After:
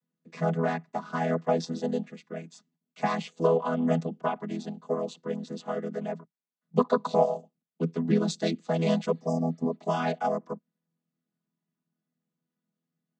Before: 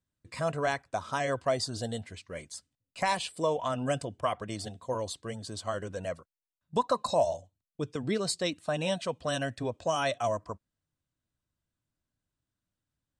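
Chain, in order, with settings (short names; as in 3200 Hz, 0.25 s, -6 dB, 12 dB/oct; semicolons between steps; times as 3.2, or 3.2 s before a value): chord vocoder major triad, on E3; 9.16–9.73 spectral repair 1200–4700 Hz after; 8.3–9.33 high shelf 4900 Hz +9.5 dB; gain +4.5 dB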